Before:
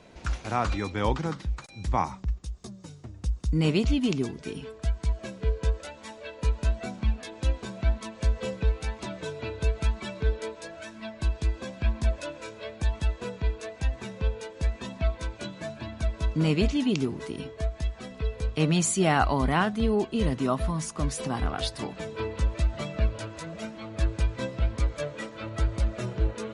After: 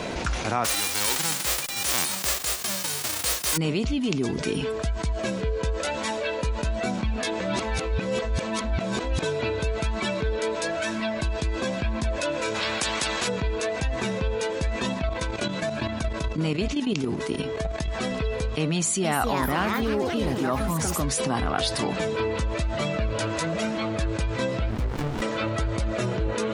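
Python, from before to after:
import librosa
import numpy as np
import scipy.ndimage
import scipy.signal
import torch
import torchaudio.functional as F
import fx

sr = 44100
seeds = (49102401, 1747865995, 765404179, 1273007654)

y = fx.envelope_flatten(x, sr, power=0.1, at=(0.64, 3.56), fade=0.02)
y = fx.spectral_comp(y, sr, ratio=4.0, at=(12.54, 13.27), fade=0.02)
y = fx.level_steps(y, sr, step_db=12, at=(14.94, 17.88))
y = fx.echo_pitch(y, sr, ms=321, semitones=4, count=3, db_per_echo=-6.0, at=(18.72, 21.22))
y = fx.running_max(y, sr, window=65, at=(24.7, 25.22))
y = fx.edit(y, sr, fx.reverse_span(start_s=7.4, length_s=1.82), tone=tone)
y = fx.rider(y, sr, range_db=3, speed_s=0.5)
y = fx.low_shelf(y, sr, hz=130.0, db=-7.0)
y = fx.env_flatten(y, sr, amount_pct=70)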